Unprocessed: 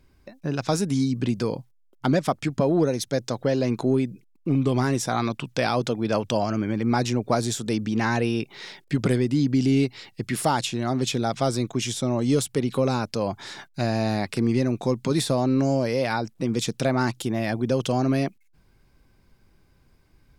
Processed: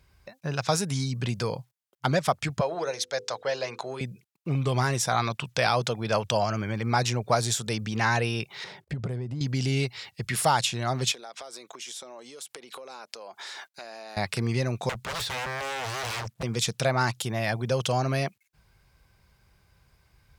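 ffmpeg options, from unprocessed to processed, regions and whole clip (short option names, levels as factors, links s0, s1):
-filter_complex "[0:a]asettb=1/sr,asplit=3[s0][s1][s2];[s0]atrim=end=2.614[s3];[s1]atrim=start=2.61:end=4.01,asetpts=PTS-STARTPTS,afade=t=in:d=0.004:c=qsin,afade=t=out:st=1.396:d=0.004:c=qsin,acrossover=split=420 7800:gain=0.126 1 0.224[s4][s5][s6];[s4][s5][s6]amix=inputs=3:normalize=0,bandreject=f=50:t=h:w=6,bandreject=f=100:t=h:w=6,bandreject=f=150:t=h:w=6,bandreject=f=200:t=h:w=6,bandreject=f=250:t=h:w=6,bandreject=f=300:t=h:w=6,bandreject=f=350:t=h:w=6,bandreject=f=400:t=h:w=6,bandreject=f=450:t=h:w=6,bandreject=f=500:t=h:w=6[s7];[s2]atrim=start=4.006[s8];[s3][s7]acrossfade=d=0.004:c1=hsin:c2=qsin[s9];[s9][s8]acrossfade=d=0.004:c1=qsin:c2=hsin,asettb=1/sr,asplit=3[s10][s11][s12];[s10]atrim=end=8.644[s13];[s11]atrim=start=8.64:end=9.41,asetpts=PTS-STARTPTS,afade=t=in:d=0.004:c=qsin,afade=t=out:st=0.766:d=0.004:c=qsin,tiltshelf=f=1100:g=9,acompressor=threshold=0.0355:ratio=3:attack=3.2:release=140:knee=1:detection=peak[s14];[s12]atrim=start=9.406[s15];[s13][s14]acrossfade=d=0.004:c1=hsin:c2=qsin[s16];[s16][s15]acrossfade=d=0.004:c1=qsin:c2=hsin,asettb=1/sr,asplit=3[s17][s18][s19];[s17]atrim=end=11.124[s20];[s18]atrim=start=11.12:end=14.17,asetpts=PTS-STARTPTS,afade=t=in:d=0.004:c=qsin,afade=t=out:st=3.046:d=0.004:c=qsin,highpass=f=290:w=0.5412,highpass=f=290:w=1.3066,acompressor=threshold=0.0141:ratio=10:attack=3.2:release=140:knee=1:detection=peak[s21];[s19]atrim=start=14.166[s22];[s20][s21]acrossfade=d=0.004:c1=hsin:c2=qsin[s23];[s23][s22]acrossfade=d=0.004:c1=qsin:c2=hsin,asettb=1/sr,asplit=3[s24][s25][s26];[s24]atrim=end=14.894[s27];[s25]atrim=start=14.89:end=16.43,asetpts=PTS-STARTPTS,afade=t=in:d=0.004:c=qsin,afade=t=out:st=1.536:d=0.004:c=qsin,acrossover=split=5000[s28][s29];[s29]acompressor=threshold=0.00562:ratio=4:attack=1:release=60[s30];[s28][s30]amix=inputs=2:normalize=0,asubboost=boost=6.5:cutoff=210,aeval=exprs='0.0422*(abs(mod(val(0)/0.0422+3,4)-2)-1)':c=same[s31];[s26]atrim=start=16.426[s32];[s27][s31]acrossfade=d=0.004:c1=hsin:c2=qsin[s33];[s33][s32]acrossfade=d=0.004:c1=qsin:c2=hsin,highpass=47,equalizer=f=280:t=o:w=1.1:g=-15,volume=1.33"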